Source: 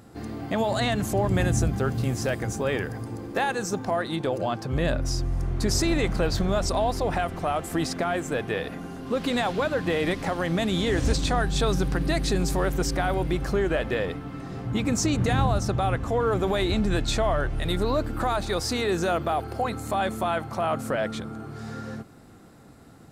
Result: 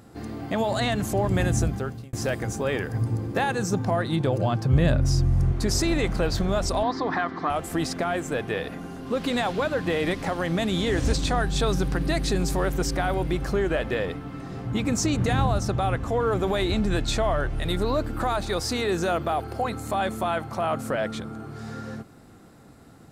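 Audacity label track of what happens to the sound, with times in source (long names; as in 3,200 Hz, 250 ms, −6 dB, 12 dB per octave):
1.640000	2.130000	fade out
2.930000	5.520000	parametric band 110 Hz +11.5 dB 1.5 octaves
6.830000	7.500000	loudspeaker in its box 190–5,100 Hz, peaks and dips at 280 Hz +9 dB, 580 Hz −9 dB, 1,100 Hz +9 dB, 1,800 Hz +8 dB, 2,700 Hz −9 dB, 4,300 Hz +4 dB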